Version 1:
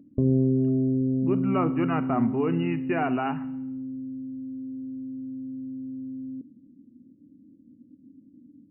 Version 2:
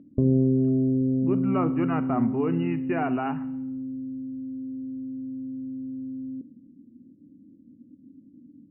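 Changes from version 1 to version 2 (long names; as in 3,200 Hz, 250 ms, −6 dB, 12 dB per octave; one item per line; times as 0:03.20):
background: send +11.0 dB
master: add high-frequency loss of the air 270 metres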